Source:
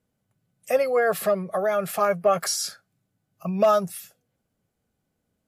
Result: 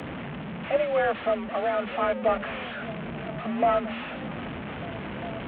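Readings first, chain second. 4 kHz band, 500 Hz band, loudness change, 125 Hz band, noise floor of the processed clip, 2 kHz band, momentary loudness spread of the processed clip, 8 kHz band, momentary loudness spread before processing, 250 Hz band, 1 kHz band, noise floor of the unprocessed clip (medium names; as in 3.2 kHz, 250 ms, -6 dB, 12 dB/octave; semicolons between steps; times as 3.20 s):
-5.0 dB, -3.5 dB, -5.5 dB, 0.0 dB, -36 dBFS, +0.5 dB, 11 LU, under -40 dB, 12 LU, +1.5 dB, -1.5 dB, -78 dBFS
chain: one-bit delta coder 16 kbps, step -26.5 dBFS; repeats whose band climbs or falls 399 ms, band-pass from 150 Hz, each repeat 0.7 oct, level -7 dB; frequency shift +41 Hz; trim -3 dB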